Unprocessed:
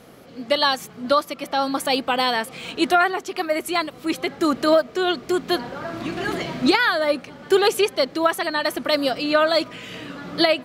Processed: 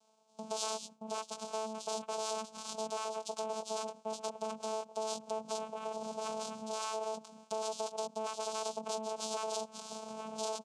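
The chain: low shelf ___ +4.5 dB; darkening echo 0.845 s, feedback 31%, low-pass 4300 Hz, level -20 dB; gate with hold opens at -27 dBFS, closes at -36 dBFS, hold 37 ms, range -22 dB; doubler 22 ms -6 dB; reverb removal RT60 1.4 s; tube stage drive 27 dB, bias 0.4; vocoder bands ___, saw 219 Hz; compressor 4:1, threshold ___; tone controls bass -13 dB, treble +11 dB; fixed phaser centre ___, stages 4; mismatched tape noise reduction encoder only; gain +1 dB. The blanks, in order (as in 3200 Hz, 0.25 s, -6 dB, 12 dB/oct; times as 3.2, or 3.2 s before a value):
180 Hz, 4, -31 dBFS, 780 Hz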